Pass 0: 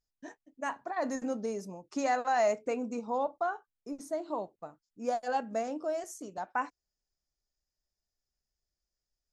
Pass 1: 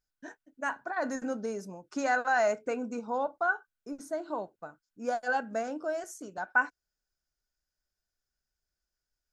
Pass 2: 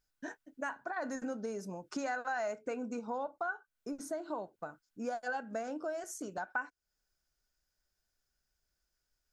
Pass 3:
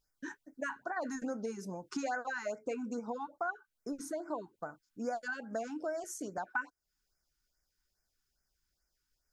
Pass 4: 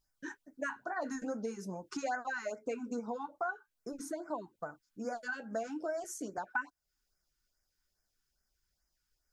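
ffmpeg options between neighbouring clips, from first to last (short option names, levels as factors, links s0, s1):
-af "equalizer=f=1500:w=6.7:g=14.5"
-af "acompressor=threshold=0.00794:ratio=3,volume=1.58"
-af "afftfilt=real='re*(1-between(b*sr/1024,530*pow(3500/530,0.5+0.5*sin(2*PI*2.4*pts/sr))/1.41,530*pow(3500/530,0.5+0.5*sin(2*PI*2.4*pts/sr))*1.41))':imag='im*(1-between(b*sr/1024,530*pow(3500/530,0.5+0.5*sin(2*PI*2.4*pts/sr))/1.41,530*pow(3500/530,0.5+0.5*sin(2*PI*2.4*pts/sr))*1.41))':win_size=1024:overlap=0.75,volume=1.12"
-af "flanger=delay=1:depth=9.5:regen=-53:speed=0.45:shape=sinusoidal,volume=1.58"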